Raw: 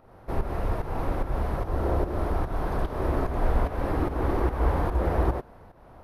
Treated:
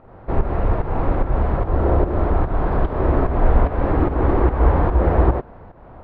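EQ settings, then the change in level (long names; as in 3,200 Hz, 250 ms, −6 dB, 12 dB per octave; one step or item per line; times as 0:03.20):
high-frequency loss of the air 380 metres
+9.0 dB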